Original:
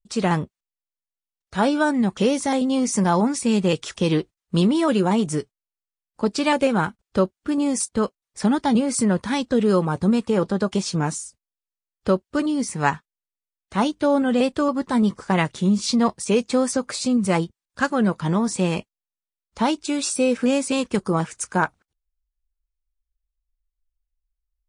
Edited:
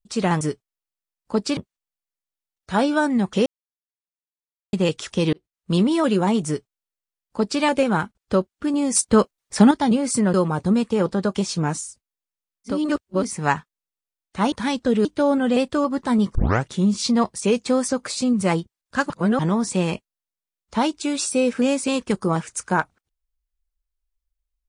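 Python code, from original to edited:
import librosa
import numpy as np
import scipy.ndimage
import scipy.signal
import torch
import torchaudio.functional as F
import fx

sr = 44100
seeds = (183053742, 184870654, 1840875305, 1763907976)

y = fx.edit(x, sr, fx.silence(start_s=2.3, length_s=1.27),
    fx.fade_in_span(start_s=4.17, length_s=0.47),
    fx.duplicate(start_s=5.3, length_s=1.16, to_s=0.41),
    fx.clip_gain(start_s=7.79, length_s=0.76, db=6.5),
    fx.move(start_s=9.18, length_s=0.53, to_s=13.89),
    fx.reverse_span(start_s=12.09, length_s=0.5, crossfade_s=0.16),
    fx.tape_start(start_s=15.19, length_s=0.3),
    fx.reverse_span(start_s=17.94, length_s=0.29), tone=tone)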